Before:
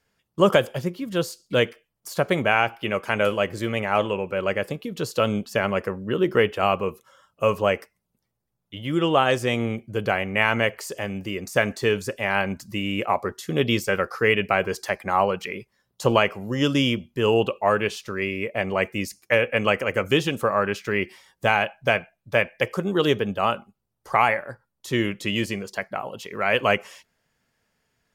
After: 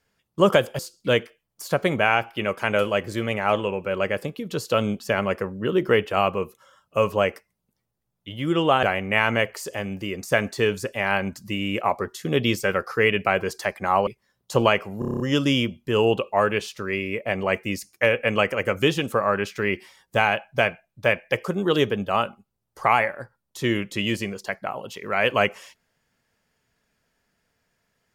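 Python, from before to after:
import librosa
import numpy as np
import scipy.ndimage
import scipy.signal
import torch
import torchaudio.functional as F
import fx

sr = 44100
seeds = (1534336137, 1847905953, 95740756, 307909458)

y = fx.edit(x, sr, fx.cut(start_s=0.79, length_s=0.46),
    fx.cut(start_s=9.29, length_s=0.78),
    fx.cut(start_s=15.31, length_s=0.26),
    fx.stutter(start_s=16.49, slice_s=0.03, count=8), tone=tone)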